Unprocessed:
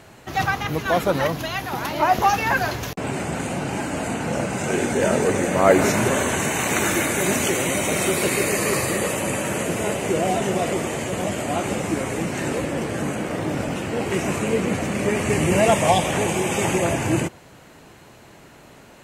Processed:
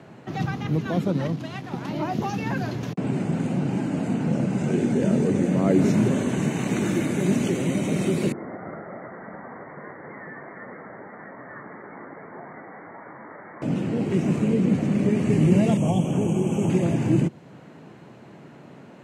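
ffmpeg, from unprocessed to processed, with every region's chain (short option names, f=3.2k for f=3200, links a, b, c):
-filter_complex "[0:a]asettb=1/sr,asplit=3[a][b][c];[a]atrim=end=1.074[d];[b]atrim=start=1.07:end=1.88,asetpts=PTS-STARTPTS,afade=t=in:d=0.004:c=qsin,afade=t=out:st=0.806:d=0.004:c=qsin,lowpass=11k,aeval=exprs='sgn(val(0))*max(abs(val(0))-0.0168,0)':c=same[e];[c]atrim=start=1.876[f];[d][e]acrossfade=d=0.004:c1=hsin:c2=qsin[g];[g][f]acrossfade=d=0.004:c1=qsin:c2=hsin,asettb=1/sr,asplit=3[h][i][j];[h]atrim=end=8.324[k];[i]atrim=start=8.32:end=13.62,asetpts=PTS-STARTPTS,afade=t=in:d=0.004:c=qsin,afade=t=out:st=5.296:d=0.004:c=qsin,highpass=1.4k,lowpass=f=2.1k:t=q:w=0.5098,lowpass=f=2.1k:t=q:w=0.6013,lowpass=f=2.1k:t=q:w=0.9,lowpass=f=2.1k:t=q:w=2.563,afreqshift=-2500[l];[j]atrim=start=13.616[m];[k][l]acrossfade=d=0.004:c1=hsin:c2=qsin[n];[n][m]acrossfade=d=0.004:c1=qsin:c2=hsin,asettb=1/sr,asplit=3[o][p][q];[o]atrim=end=15.774[r];[p]atrim=start=15.77:end=16.7,asetpts=PTS-STARTPTS,afade=t=in:d=0.004:c=qsin,afade=t=out:st=0.926:d=0.004:c=qsin,asuperstop=centerf=4300:order=12:qfactor=2,equalizer=f=1.9k:t=o:w=0.5:g=-14.5[s];[q]atrim=start=16.696[t];[r][s]acrossfade=d=0.004:c1=hsin:c2=qsin[u];[u][t]acrossfade=d=0.004:c1=qsin:c2=hsin,highpass=f=150:w=0.5412,highpass=f=150:w=1.3066,aemphasis=mode=reproduction:type=riaa,acrossover=split=360|3000[v][w][x];[w]acompressor=threshold=-39dB:ratio=2[y];[v][y][x]amix=inputs=3:normalize=0,volume=-2dB"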